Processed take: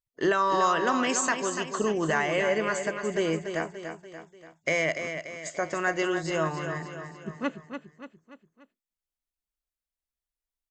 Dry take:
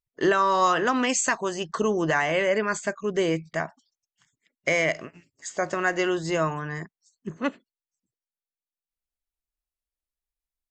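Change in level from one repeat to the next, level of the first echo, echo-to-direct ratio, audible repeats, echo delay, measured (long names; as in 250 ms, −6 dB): −6.0 dB, −8.0 dB, −7.0 dB, 4, 290 ms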